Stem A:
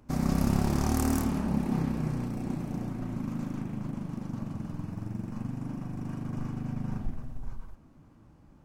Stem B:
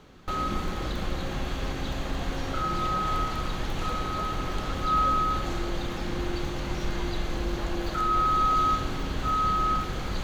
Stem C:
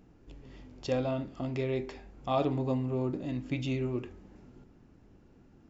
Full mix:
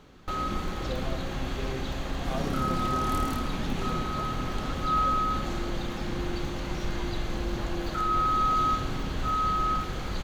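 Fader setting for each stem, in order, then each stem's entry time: -7.5 dB, -1.5 dB, -6.5 dB; 2.15 s, 0.00 s, 0.00 s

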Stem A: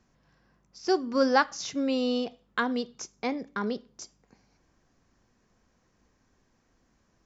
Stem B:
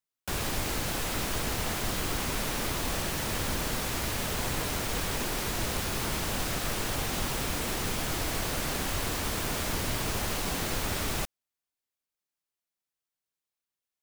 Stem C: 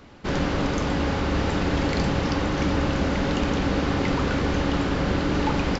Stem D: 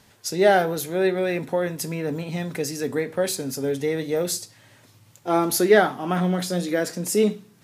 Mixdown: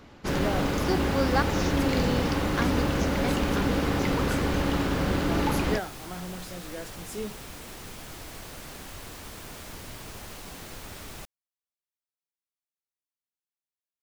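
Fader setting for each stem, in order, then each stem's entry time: -4.0 dB, -10.5 dB, -2.5 dB, -16.0 dB; 0.00 s, 0.00 s, 0.00 s, 0.00 s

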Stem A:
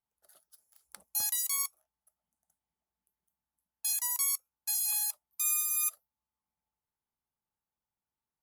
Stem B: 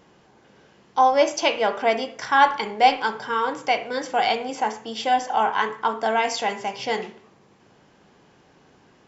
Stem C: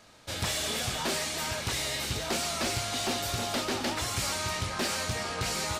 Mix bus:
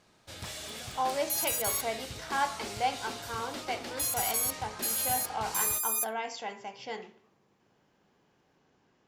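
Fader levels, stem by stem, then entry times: -0.5 dB, -13.5 dB, -10.0 dB; 0.15 s, 0.00 s, 0.00 s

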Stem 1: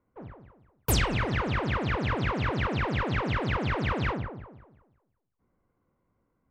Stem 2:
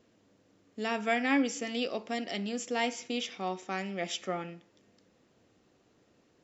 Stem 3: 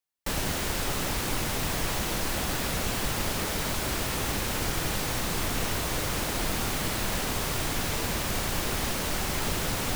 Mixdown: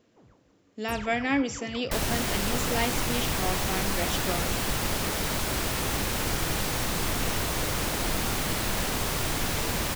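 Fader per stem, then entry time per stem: -14.5 dB, +1.5 dB, +1.0 dB; 0.00 s, 0.00 s, 1.65 s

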